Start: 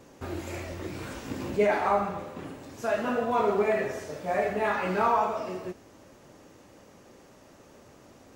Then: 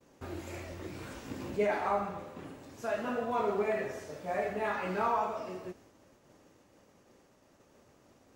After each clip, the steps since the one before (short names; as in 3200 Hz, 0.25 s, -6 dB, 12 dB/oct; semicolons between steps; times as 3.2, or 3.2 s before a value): expander -49 dBFS; gain -6 dB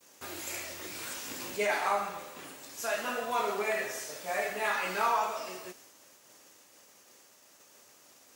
tilt +4.5 dB/oct; gain +2.5 dB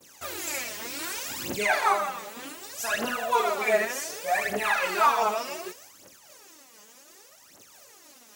phaser 0.66 Hz, delay 4.9 ms, feedback 76%; gain +2.5 dB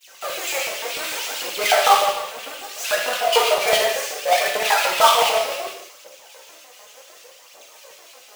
half-waves squared off; LFO high-pass square 6.7 Hz 570–2800 Hz; non-linear reverb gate 0.24 s falling, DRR 0 dB; gain -1 dB